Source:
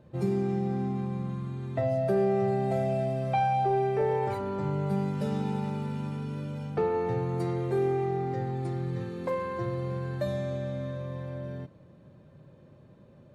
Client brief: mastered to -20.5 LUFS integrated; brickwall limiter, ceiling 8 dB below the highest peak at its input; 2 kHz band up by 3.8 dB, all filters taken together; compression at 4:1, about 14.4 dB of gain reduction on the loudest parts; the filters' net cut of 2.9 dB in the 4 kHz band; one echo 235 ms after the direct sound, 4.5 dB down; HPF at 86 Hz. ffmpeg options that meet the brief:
-af "highpass=86,equalizer=f=2000:t=o:g=6,equalizer=f=4000:t=o:g=-6,acompressor=threshold=0.00891:ratio=4,alimiter=level_in=4.47:limit=0.0631:level=0:latency=1,volume=0.224,aecho=1:1:235:0.596,volume=15"

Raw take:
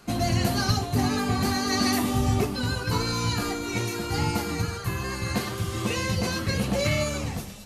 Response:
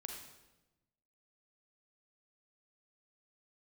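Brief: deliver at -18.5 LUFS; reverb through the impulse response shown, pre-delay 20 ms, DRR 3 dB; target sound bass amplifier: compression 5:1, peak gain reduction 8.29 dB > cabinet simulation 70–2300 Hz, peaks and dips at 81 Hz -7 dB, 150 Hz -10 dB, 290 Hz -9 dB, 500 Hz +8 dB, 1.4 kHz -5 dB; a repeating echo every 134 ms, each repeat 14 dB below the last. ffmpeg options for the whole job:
-filter_complex "[0:a]aecho=1:1:134|268:0.2|0.0399,asplit=2[s0][s1];[1:a]atrim=start_sample=2205,adelay=20[s2];[s1][s2]afir=irnorm=-1:irlink=0,volume=0.944[s3];[s0][s3]amix=inputs=2:normalize=0,acompressor=threshold=0.0562:ratio=5,highpass=f=70:w=0.5412,highpass=f=70:w=1.3066,equalizer=f=81:t=q:w=4:g=-7,equalizer=f=150:t=q:w=4:g=-10,equalizer=f=290:t=q:w=4:g=-9,equalizer=f=500:t=q:w=4:g=8,equalizer=f=1400:t=q:w=4:g=-5,lowpass=f=2300:w=0.5412,lowpass=f=2300:w=1.3066,volume=4.47"

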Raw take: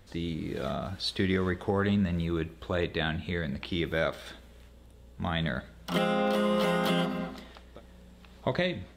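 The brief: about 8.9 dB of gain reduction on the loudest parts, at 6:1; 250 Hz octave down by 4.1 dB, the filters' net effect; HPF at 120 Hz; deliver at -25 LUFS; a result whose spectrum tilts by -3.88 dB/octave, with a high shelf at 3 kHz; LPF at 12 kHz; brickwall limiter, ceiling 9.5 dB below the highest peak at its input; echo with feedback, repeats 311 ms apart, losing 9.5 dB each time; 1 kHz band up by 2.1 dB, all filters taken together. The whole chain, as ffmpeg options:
-af "highpass=120,lowpass=12000,equalizer=f=250:t=o:g=-5.5,equalizer=f=1000:t=o:g=3.5,highshelf=f=3000:g=-3,acompressor=threshold=0.0224:ratio=6,alimiter=level_in=1.41:limit=0.0631:level=0:latency=1,volume=0.708,aecho=1:1:311|622|933|1244:0.335|0.111|0.0365|0.012,volume=5.01"

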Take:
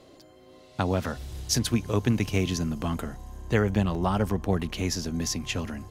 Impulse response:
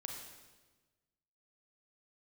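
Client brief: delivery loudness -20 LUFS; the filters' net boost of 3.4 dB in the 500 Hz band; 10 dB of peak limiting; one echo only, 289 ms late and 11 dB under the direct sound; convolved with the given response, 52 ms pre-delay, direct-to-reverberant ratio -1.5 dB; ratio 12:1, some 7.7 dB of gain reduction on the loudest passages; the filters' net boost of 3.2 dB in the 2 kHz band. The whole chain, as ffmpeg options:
-filter_complex "[0:a]equalizer=f=500:t=o:g=4,equalizer=f=2000:t=o:g=4,acompressor=threshold=0.0562:ratio=12,alimiter=limit=0.0841:level=0:latency=1,aecho=1:1:289:0.282,asplit=2[s0][s1];[1:a]atrim=start_sample=2205,adelay=52[s2];[s1][s2]afir=irnorm=-1:irlink=0,volume=1.5[s3];[s0][s3]amix=inputs=2:normalize=0,volume=2.82"

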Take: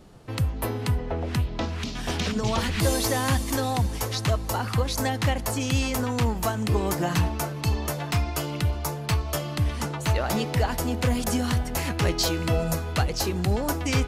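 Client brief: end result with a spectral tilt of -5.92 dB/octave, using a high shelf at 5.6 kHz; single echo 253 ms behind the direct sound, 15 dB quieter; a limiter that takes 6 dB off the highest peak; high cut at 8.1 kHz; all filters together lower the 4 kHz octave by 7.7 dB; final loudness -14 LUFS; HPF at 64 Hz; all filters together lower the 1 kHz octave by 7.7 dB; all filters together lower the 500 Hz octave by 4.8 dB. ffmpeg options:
-af "highpass=64,lowpass=8100,equalizer=f=500:t=o:g=-3.5,equalizer=f=1000:t=o:g=-8.5,equalizer=f=4000:t=o:g=-6.5,highshelf=f=5600:g=-6.5,alimiter=limit=0.1:level=0:latency=1,aecho=1:1:253:0.178,volume=6.68"

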